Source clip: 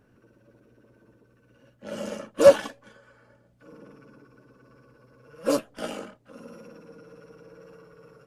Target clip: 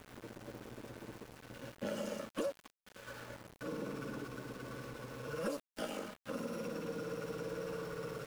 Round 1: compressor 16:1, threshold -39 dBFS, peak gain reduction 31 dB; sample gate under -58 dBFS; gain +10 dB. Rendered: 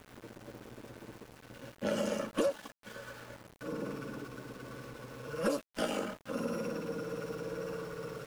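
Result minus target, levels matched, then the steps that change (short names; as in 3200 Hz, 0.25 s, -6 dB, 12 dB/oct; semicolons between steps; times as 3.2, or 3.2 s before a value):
compressor: peak gain reduction -7 dB
change: compressor 16:1, threshold -46.5 dBFS, peak gain reduction 38.5 dB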